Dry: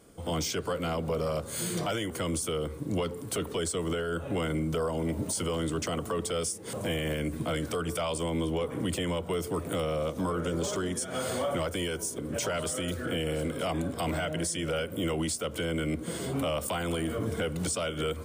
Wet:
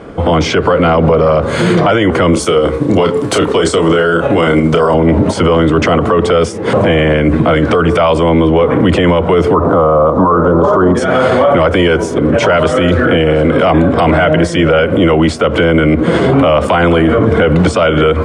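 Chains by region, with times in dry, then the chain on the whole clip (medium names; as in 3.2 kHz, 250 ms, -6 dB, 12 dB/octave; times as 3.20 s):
2.33–4.94 s: tremolo 12 Hz, depth 51% + tone controls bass -4 dB, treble +11 dB + doubling 30 ms -6 dB
9.54–10.95 s: CVSD coder 64 kbps + resonant high shelf 1.6 kHz -12 dB, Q 3
whole clip: low-pass 1.9 kHz 12 dB/octave; bass shelf 330 Hz -5 dB; loudness maximiser +30.5 dB; trim -1 dB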